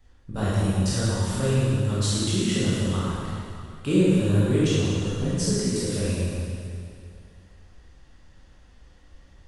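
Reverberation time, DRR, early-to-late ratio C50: 2.4 s, -10.0 dB, -5.0 dB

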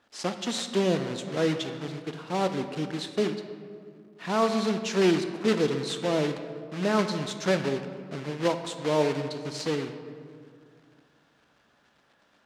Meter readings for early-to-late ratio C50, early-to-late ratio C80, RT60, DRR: 9.0 dB, 10.0 dB, 2.2 s, 8.0 dB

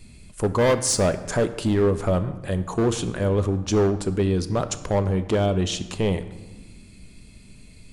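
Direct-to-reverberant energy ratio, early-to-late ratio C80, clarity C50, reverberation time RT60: 10.0 dB, 15.0 dB, 13.0 dB, 1.4 s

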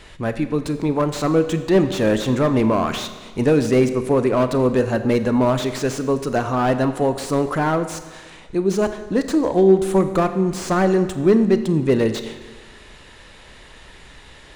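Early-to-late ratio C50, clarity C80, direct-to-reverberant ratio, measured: 11.0 dB, 12.0 dB, 9.5 dB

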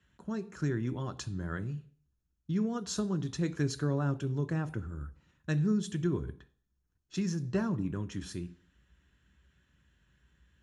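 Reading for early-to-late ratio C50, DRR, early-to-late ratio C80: 18.5 dB, 10.0 dB, 21.5 dB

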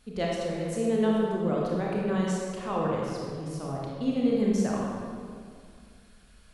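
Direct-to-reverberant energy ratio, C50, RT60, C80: -4.0 dB, -2.0 dB, 2.2 s, 0.5 dB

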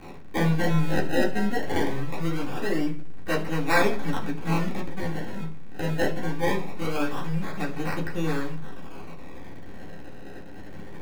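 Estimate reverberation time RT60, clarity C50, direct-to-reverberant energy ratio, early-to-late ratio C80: 0.45 s, 11.5 dB, -4.5 dB, 16.0 dB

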